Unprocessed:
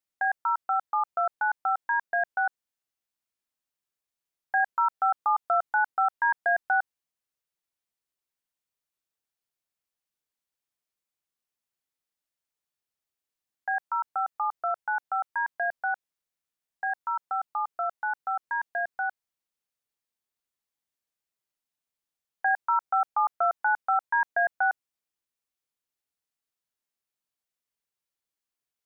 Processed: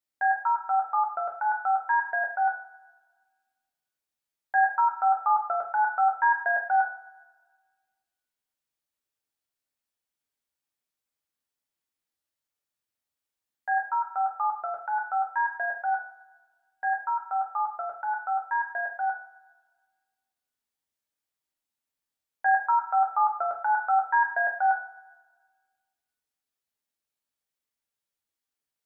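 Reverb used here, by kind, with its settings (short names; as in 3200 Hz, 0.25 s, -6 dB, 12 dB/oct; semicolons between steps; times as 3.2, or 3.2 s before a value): two-slope reverb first 0.46 s, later 1.5 s, from -16 dB, DRR 0 dB; gain -2.5 dB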